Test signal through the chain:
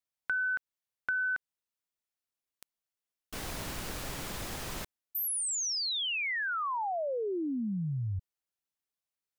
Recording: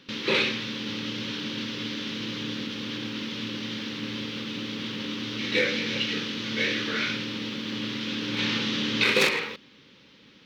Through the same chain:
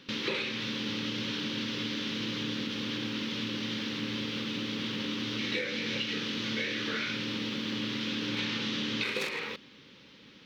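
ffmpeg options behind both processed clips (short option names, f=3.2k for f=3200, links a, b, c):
-af "acompressor=threshold=-29dB:ratio=12"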